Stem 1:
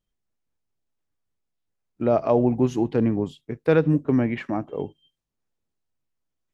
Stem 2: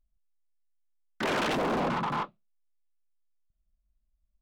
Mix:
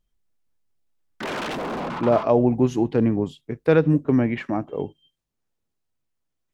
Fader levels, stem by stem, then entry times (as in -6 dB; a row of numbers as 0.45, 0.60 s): +1.5, -0.5 dB; 0.00, 0.00 s